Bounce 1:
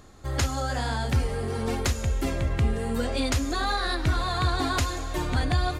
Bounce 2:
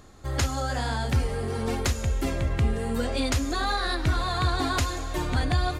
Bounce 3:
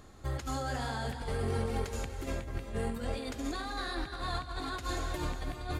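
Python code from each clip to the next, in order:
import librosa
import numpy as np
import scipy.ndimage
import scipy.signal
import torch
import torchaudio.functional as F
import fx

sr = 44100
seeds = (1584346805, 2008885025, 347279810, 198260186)

y1 = x
y2 = fx.peak_eq(y1, sr, hz=5900.0, db=-2.5, octaves=0.77)
y2 = fx.over_compress(y2, sr, threshold_db=-29.0, ratio=-0.5)
y2 = fx.rev_gated(y2, sr, seeds[0], gate_ms=410, shape='rising', drr_db=7.0)
y2 = F.gain(torch.from_numpy(y2), -6.5).numpy()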